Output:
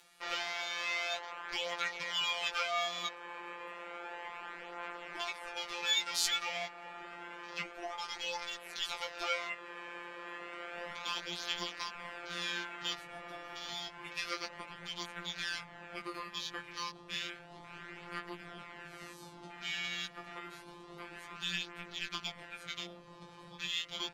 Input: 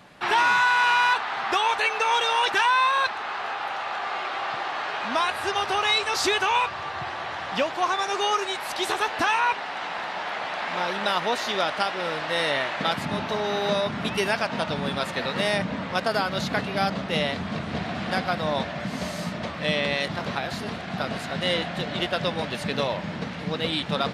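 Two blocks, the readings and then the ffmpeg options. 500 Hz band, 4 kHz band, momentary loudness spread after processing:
-18.5 dB, -9.0 dB, 14 LU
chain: -filter_complex "[0:a]afwtdn=0.02,aderivative,asplit=2[a][b];[b]acompressor=mode=upward:threshold=-37dB:ratio=2.5,volume=-2dB[c];[a][c]amix=inputs=2:normalize=0,afftfilt=real='hypot(re,im)*cos(PI*b)':imag='0':win_size=1024:overlap=0.75,flanger=delay=15.5:depth=3.4:speed=0.15,afreqshift=-340"

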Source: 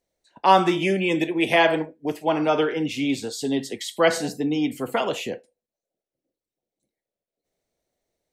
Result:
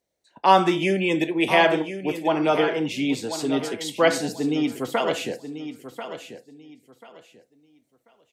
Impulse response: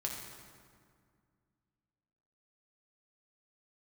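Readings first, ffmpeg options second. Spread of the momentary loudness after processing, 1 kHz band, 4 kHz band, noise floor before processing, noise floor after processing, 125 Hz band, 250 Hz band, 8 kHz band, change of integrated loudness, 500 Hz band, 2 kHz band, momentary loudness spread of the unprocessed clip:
18 LU, +0.5 dB, +0.5 dB, under -85 dBFS, -72 dBFS, 0.0 dB, +0.5 dB, +0.5 dB, 0.0 dB, +0.5 dB, +0.5 dB, 9 LU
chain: -filter_complex "[0:a]highpass=60,asplit=2[a][b];[b]aecho=0:1:1039|2078|3117:0.282|0.0676|0.0162[c];[a][c]amix=inputs=2:normalize=0"

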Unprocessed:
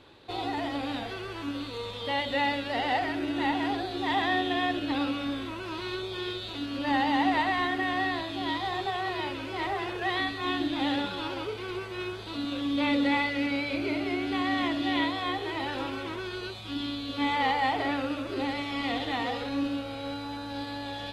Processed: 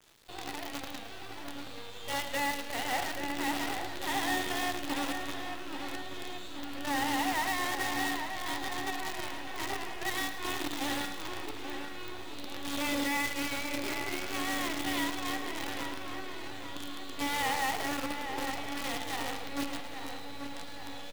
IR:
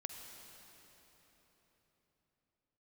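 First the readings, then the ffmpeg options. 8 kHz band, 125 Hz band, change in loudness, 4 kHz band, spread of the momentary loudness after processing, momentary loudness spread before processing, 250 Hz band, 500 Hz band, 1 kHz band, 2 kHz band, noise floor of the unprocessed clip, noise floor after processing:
n/a, -7.0 dB, -4.5 dB, -3.5 dB, 12 LU, 10 LU, -8.0 dB, -7.0 dB, -5.5 dB, -3.0 dB, -38 dBFS, -42 dBFS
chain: -filter_complex "[0:a]acrossover=split=3200[a][b];[b]acompressor=threshold=-49dB:ratio=4:attack=1:release=60[c];[a][c]amix=inputs=2:normalize=0,highshelf=f=2k:g=8,acrusher=bits=5:dc=4:mix=0:aa=0.000001,asplit=2[d][e];[e]adelay=833,lowpass=f=3.2k:p=1,volume=-7dB,asplit=2[f][g];[g]adelay=833,lowpass=f=3.2k:p=1,volume=0.55,asplit=2[h][i];[i]adelay=833,lowpass=f=3.2k:p=1,volume=0.55,asplit=2[j][k];[k]adelay=833,lowpass=f=3.2k:p=1,volume=0.55,asplit=2[l][m];[m]adelay=833,lowpass=f=3.2k:p=1,volume=0.55,asplit=2[n][o];[o]adelay=833,lowpass=f=3.2k:p=1,volume=0.55,asplit=2[p][q];[q]adelay=833,lowpass=f=3.2k:p=1,volume=0.55[r];[d][f][h][j][l][n][p][r]amix=inputs=8:normalize=0,asplit=2[s][t];[1:a]atrim=start_sample=2205,adelay=108[u];[t][u]afir=irnorm=-1:irlink=0,volume=-8.5dB[v];[s][v]amix=inputs=2:normalize=0,volume=-7.5dB"

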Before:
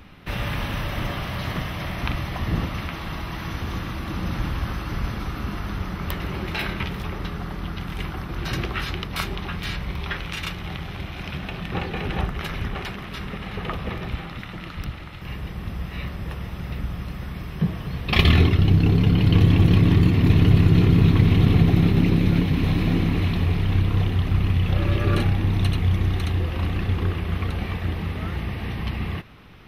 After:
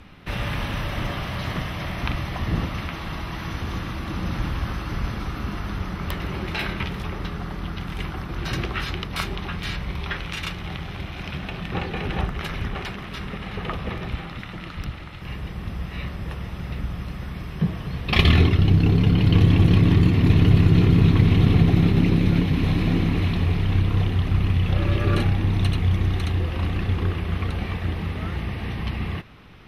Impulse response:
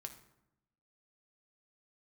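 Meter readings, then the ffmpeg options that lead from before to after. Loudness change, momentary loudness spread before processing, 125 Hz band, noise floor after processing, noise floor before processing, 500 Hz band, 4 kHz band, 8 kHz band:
0.0 dB, 16 LU, 0.0 dB, -36 dBFS, -36 dBFS, 0.0 dB, 0.0 dB, n/a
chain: -af "lowpass=12k"

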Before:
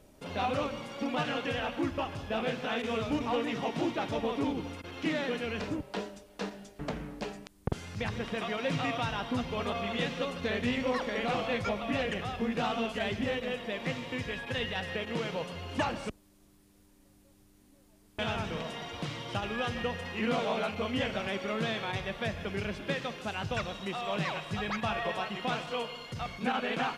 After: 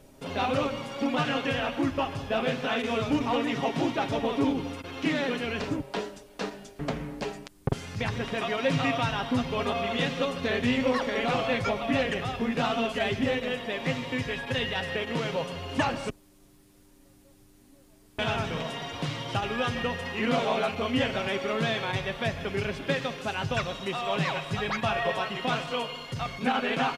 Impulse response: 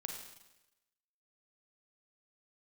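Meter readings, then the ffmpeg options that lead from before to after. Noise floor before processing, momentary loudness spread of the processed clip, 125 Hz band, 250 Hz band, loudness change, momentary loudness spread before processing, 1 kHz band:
-62 dBFS, 7 LU, +5.0 dB, +4.5 dB, +4.5 dB, 7 LU, +4.5 dB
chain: -af "aecho=1:1:7.4:0.39,volume=4dB"

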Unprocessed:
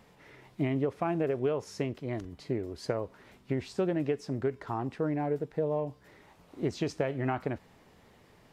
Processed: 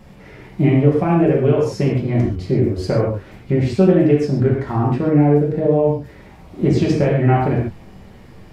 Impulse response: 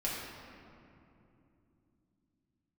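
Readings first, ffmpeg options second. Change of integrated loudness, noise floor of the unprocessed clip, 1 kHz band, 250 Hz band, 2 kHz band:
+16.0 dB, -61 dBFS, +13.0 dB, +17.0 dB, +11.5 dB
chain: -filter_complex "[0:a]lowshelf=f=220:g=12[a];[1:a]atrim=start_sample=2205,afade=t=out:st=0.2:d=0.01,atrim=end_sample=9261[b];[a][b]afir=irnorm=-1:irlink=0,volume=7.5dB"

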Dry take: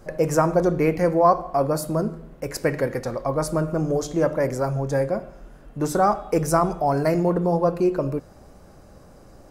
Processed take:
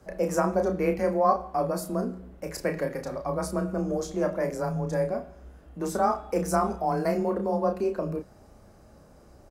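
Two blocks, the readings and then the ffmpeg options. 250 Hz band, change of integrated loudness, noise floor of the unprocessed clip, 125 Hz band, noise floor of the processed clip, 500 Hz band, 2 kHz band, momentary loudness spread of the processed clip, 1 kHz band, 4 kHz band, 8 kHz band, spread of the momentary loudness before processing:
-5.5 dB, -5.5 dB, -48 dBFS, -8.0 dB, -54 dBFS, -5.0 dB, -5.5 dB, 9 LU, -4.5 dB, -5.5 dB, -5.5 dB, 8 LU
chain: -filter_complex "[0:a]afreqshift=24,asplit=2[a][b];[b]adelay=32,volume=-6dB[c];[a][c]amix=inputs=2:normalize=0,bandreject=f=49.79:t=h:w=4,bandreject=f=99.58:t=h:w=4,bandreject=f=149.37:t=h:w=4,volume=-6.5dB"

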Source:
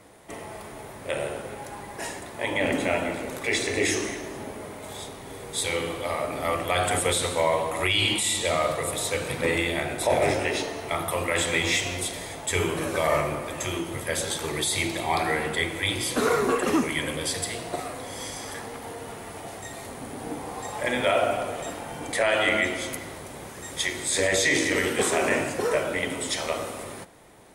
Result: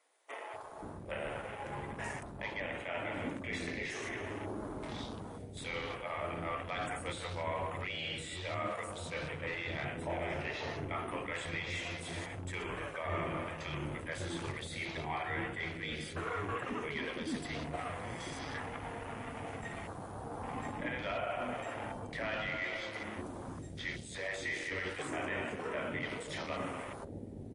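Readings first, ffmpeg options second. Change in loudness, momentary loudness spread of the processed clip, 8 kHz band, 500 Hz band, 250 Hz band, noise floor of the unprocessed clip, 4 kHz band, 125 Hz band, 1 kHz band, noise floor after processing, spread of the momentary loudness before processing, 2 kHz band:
-13.5 dB, 6 LU, -22.0 dB, -14.0 dB, -11.0 dB, -41 dBFS, -15.5 dB, -7.5 dB, -11.0 dB, -47 dBFS, 15 LU, -11.0 dB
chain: -filter_complex "[0:a]asplit=2[a][b];[b]aeval=exprs='sgn(val(0))*max(abs(val(0))-0.0168,0)':c=same,volume=-4dB[c];[a][c]amix=inputs=2:normalize=0,equalizer=f=560:w=0.55:g=-4.5,bandreject=f=128.9:t=h:w=4,bandreject=f=257.8:t=h:w=4,bandreject=f=386.7:t=h:w=4,areverse,acompressor=threshold=-33dB:ratio=5,areverse,acrossover=split=410[d][e];[d]adelay=530[f];[f][e]amix=inputs=2:normalize=0,asoftclip=type=hard:threshold=-29dB,afwtdn=0.00631,acrossover=split=2700[g][h];[h]acompressor=threshold=-49dB:ratio=4:attack=1:release=60[i];[g][i]amix=inputs=2:normalize=0" -ar 24000 -c:a libmp3lame -b:a 40k

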